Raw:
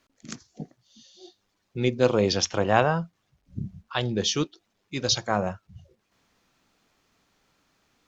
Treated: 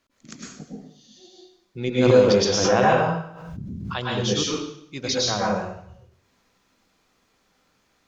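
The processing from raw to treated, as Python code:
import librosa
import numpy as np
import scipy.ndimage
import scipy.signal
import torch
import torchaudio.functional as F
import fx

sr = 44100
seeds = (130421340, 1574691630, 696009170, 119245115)

y = fx.rev_plate(x, sr, seeds[0], rt60_s=0.67, hf_ratio=0.95, predelay_ms=95, drr_db=-5.0)
y = fx.pre_swell(y, sr, db_per_s=38.0, at=(1.98, 3.98))
y = y * 10.0 ** (-3.5 / 20.0)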